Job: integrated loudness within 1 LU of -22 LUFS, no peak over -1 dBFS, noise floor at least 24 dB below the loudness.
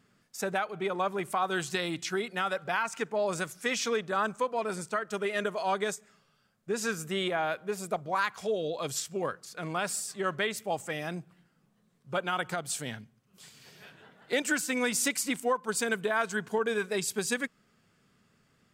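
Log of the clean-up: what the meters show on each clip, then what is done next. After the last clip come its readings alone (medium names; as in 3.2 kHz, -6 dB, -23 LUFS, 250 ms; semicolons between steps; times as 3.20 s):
loudness -31.5 LUFS; peak level -17.0 dBFS; loudness target -22.0 LUFS
-> trim +9.5 dB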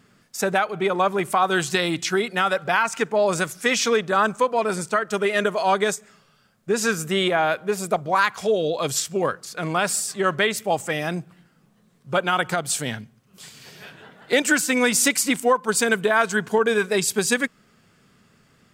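loudness -22.0 LUFS; peak level -7.5 dBFS; noise floor -60 dBFS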